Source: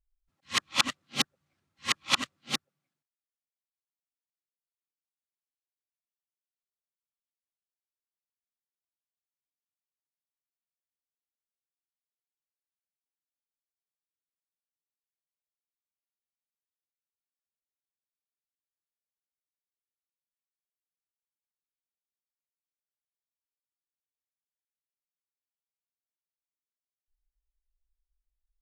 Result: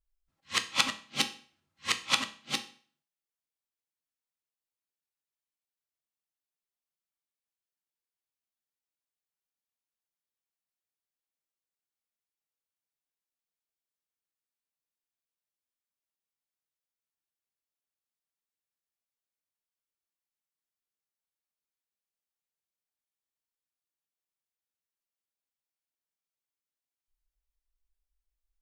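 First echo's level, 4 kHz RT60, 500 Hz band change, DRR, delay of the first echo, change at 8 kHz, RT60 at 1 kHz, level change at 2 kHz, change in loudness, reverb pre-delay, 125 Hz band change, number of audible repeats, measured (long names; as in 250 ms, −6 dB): no echo audible, 0.45 s, −0.5 dB, 7.0 dB, no echo audible, −1.0 dB, 0.45 s, −0.5 dB, −1.0 dB, 6 ms, −2.0 dB, no echo audible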